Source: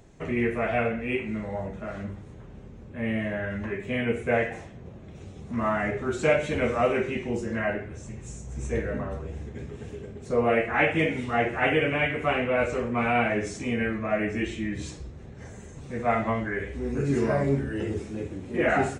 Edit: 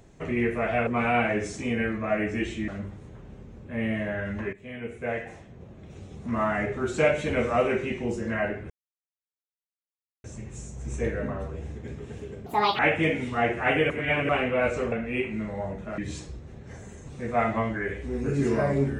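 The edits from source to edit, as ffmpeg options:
-filter_complex "[0:a]asplit=11[a][b][c][d][e][f][g][h][i][j][k];[a]atrim=end=0.872[l];[b]atrim=start=12.878:end=14.692[m];[c]atrim=start=1.928:end=3.78,asetpts=PTS-STARTPTS,afade=t=out:st=1.848:d=0.004:c=hsin:silence=0.177828[n];[d]atrim=start=3.78:end=7.95,asetpts=PTS-STARTPTS,afade=t=in:d=1.58:silence=0.177828,afade=t=out:st=4.166:d=0.004:c=hsin,apad=pad_dur=1.54[o];[e]atrim=start=7.95:end=10.174,asetpts=PTS-STARTPTS,afade=t=in:d=0.004:c=hsin[p];[f]atrim=start=10.17:end=10.75,asetpts=PTS-STARTPTS,asetrate=77616,aresample=44100[q];[g]atrim=start=10.746:end=11.862[r];[h]atrim=start=11.858:end=12.252,asetpts=PTS-STARTPTS,areverse[s];[i]atrim=start=12.248:end=12.882[t];[j]atrim=start=0.868:end=1.932[u];[k]atrim=start=14.688[v];[l][m]acrossfade=d=0.004:c1=hsin:c2=hsin[w];[n][o][p]concat=n=3:v=0:a=1[x];[w][x]acrossfade=d=0.004:c1=hsin:c2=hsin[y];[y][q]acrossfade=d=0.004:c1=hsin:c2=hsin[z];[z][r]acrossfade=d=0.004:c1=hsin:c2=hsin[aa];[aa][s]acrossfade=d=0.004:c1=hsin:c2=hsin[ab];[ab][t]acrossfade=d=0.004:c1=hsin:c2=hsin[ac];[ac][u]acrossfade=d=0.004:c1=hsin:c2=hsin[ad];[ad][v]acrossfade=d=0.004:c1=hsin:c2=hsin"

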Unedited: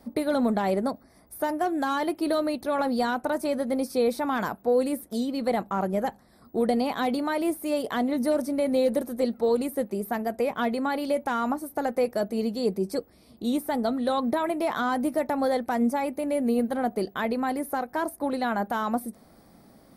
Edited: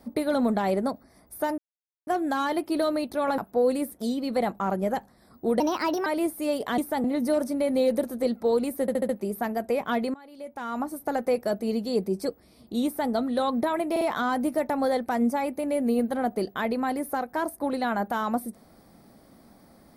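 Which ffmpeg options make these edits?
-filter_complex "[0:a]asplit=14[a][b][c][d][e][f][g][h][i][j][k][l][m][n];[a]atrim=end=1.58,asetpts=PTS-STARTPTS,afade=t=out:st=1.576:d=0.004:c=hsin,apad=pad_dur=0.49[o];[b]atrim=start=1.58:end=2.892,asetpts=PTS-STARTPTS,afade=t=in:d=0.004:c=hsin[p];[c]atrim=start=4.488:end=6.714[q];[d]atrim=start=6.71:end=7.3,asetpts=PTS-STARTPTS,asetrate=56448,aresample=44100,atrim=end_sample=20327,asetpts=PTS-STARTPTS[r];[e]atrim=start=7.296:end=8.022[s];[f]atrim=start=13.548:end=13.812[t];[g]atrim=start=8.018:end=9.862[u];[h]atrim=start=9.788:end=9.862[v];[i]atrim=start=9.788:end=9.862[w];[j]atrim=start=9.788:end=9.862[x];[k]atrim=start=9.788:end=10.84,asetpts=PTS-STARTPTS,afade=t=out:st=1.048:d=0.004:c=hsin:silence=0.0794328[y];[l]atrim=start=10.84:end=14.662,asetpts=PTS-STARTPTS,afade=t=in:d=0.79:c=qua:silence=0.0794328[z];[m]atrim=start=14.608:end=14.662[aa];[n]atrim=start=14.608[ab];[o][p]concat=n=2:v=0:a=1[ac];[ac][q]acrossfade=d=0.004:c1=hsin:c2=hsin[ad];[ad][r]acrossfade=d=0.004:c1=hsin:c2=hsin[ae];[ae][s]acrossfade=d=0.004:c1=hsin:c2=hsin[af];[af][t]acrossfade=d=0.004:c1=hsin:c2=hsin[ag];[ag][u]acrossfade=d=0.004:c1=hsin:c2=hsin[ah];[ah][v]acrossfade=d=0.004:c1=hsin:c2=hsin[ai];[ai][w]acrossfade=d=0.004:c1=hsin:c2=hsin[aj];[aj][x]acrossfade=d=0.004:c1=hsin:c2=hsin[ak];[y][z]concat=n=2:v=0:a=1[al];[ak][al]acrossfade=d=0.004:c1=hsin:c2=hsin[am];[am][aa]acrossfade=d=0.004:c1=hsin:c2=hsin[an];[an][ab]acrossfade=d=0.004:c1=hsin:c2=hsin"

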